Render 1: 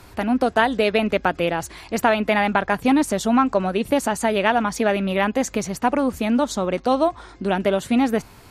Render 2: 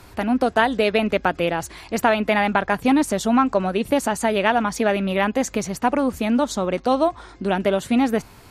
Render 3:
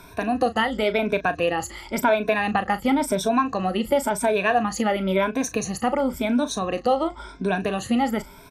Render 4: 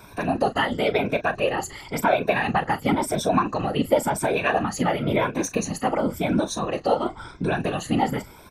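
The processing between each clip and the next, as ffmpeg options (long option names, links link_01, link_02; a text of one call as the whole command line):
ffmpeg -i in.wav -af anull out.wav
ffmpeg -i in.wav -filter_complex "[0:a]afftfilt=real='re*pow(10,16/40*sin(2*PI*(1.6*log(max(b,1)*sr/1024/100)/log(2)-(0.95)*(pts-256)/sr)))':imag='im*pow(10,16/40*sin(2*PI*(1.6*log(max(b,1)*sr/1024/100)/log(2)-(0.95)*(pts-256)/sr)))':win_size=1024:overlap=0.75,acompressor=threshold=-20dB:ratio=1.5,asplit=2[link_01][link_02];[link_02]adelay=37,volume=-12.5dB[link_03];[link_01][link_03]amix=inputs=2:normalize=0,volume=-2.5dB" out.wav
ffmpeg -i in.wav -af "afftfilt=real='hypot(re,im)*cos(2*PI*random(0))':imag='hypot(re,im)*sin(2*PI*random(1))':win_size=512:overlap=0.75,volume=5.5dB" out.wav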